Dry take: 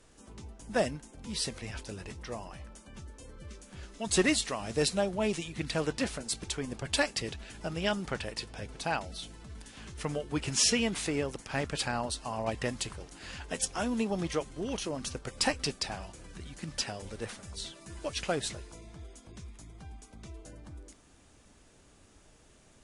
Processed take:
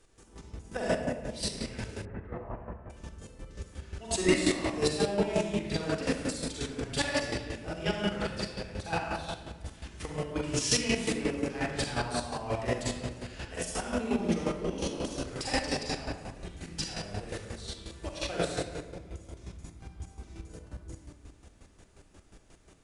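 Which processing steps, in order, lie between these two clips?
convolution reverb RT60 1.7 s, pre-delay 36 ms, DRR −6.5 dB
square-wave tremolo 5.6 Hz, depth 60%, duty 30%
0:02.05–0:02.90: low-pass filter 1,800 Hz 24 dB per octave
level −4 dB

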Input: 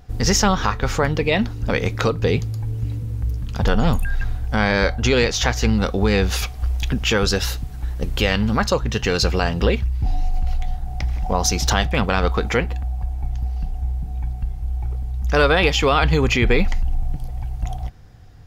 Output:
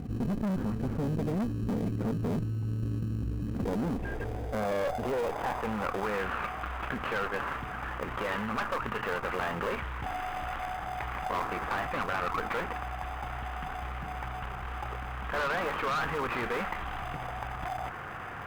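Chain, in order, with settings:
variable-slope delta modulation 16 kbit/s
band-pass filter sweep 220 Hz → 1,200 Hz, 0:03.04–0:06.05
in parallel at −11.5 dB: sample-rate reduction 1,400 Hz, jitter 0%
on the sum: tube saturation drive 28 dB, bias 0.7
envelope flattener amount 70%

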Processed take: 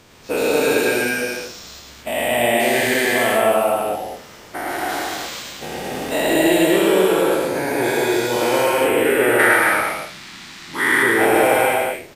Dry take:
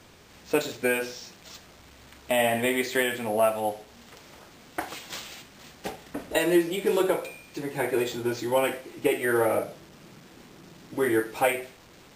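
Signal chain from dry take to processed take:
every bin's largest magnitude spread in time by 480 ms
0:09.39–0:11.03: octave-band graphic EQ 125/500/1,000/2,000/4,000/8,000 Hz −4/−11/+6/+10/+10/+6 dB
on a send: loudspeakers that aren't time-aligned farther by 37 metres −3 dB, 77 metres −4 dB
on the sum: level −2 dB

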